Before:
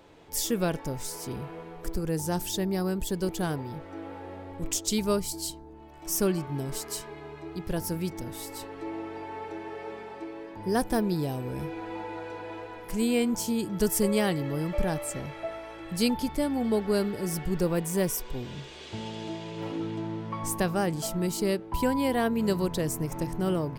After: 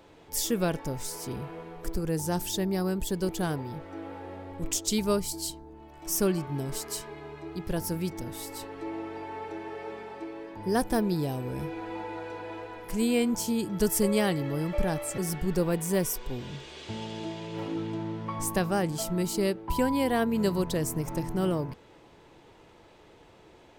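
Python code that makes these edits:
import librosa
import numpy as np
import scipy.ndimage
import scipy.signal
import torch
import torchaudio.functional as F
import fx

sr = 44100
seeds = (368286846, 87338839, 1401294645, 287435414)

y = fx.edit(x, sr, fx.cut(start_s=15.18, length_s=2.04), tone=tone)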